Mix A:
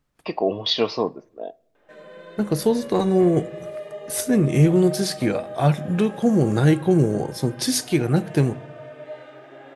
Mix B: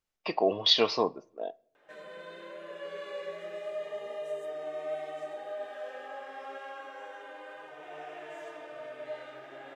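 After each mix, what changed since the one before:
second voice: muted
master: add low-shelf EQ 390 Hz −10.5 dB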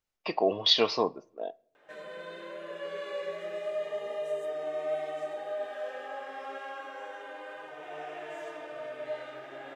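background: send +10.5 dB

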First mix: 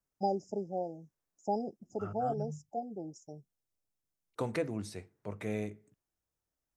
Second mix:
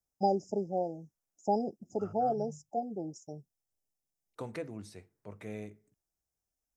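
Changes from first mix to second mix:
first voice +3.5 dB
second voice −6.0 dB

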